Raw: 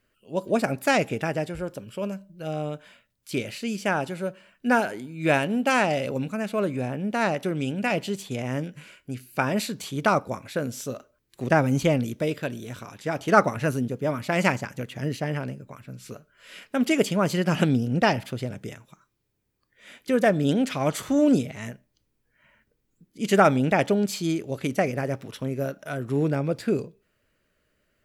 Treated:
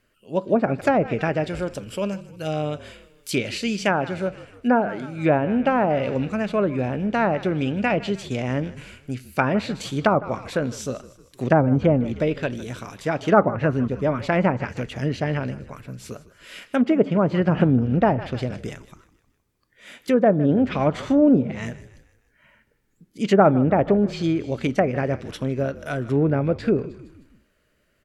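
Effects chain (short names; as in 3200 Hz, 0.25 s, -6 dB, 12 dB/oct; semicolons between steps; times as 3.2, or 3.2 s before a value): 1.44–3.96 high shelf 2500 Hz +7 dB; frequency-shifting echo 0.155 s, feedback 49%, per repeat -45 Hz, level -18 dB; treble ducked by the level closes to 980 Hz, closed at -17.5 dBFS; gain +4 dB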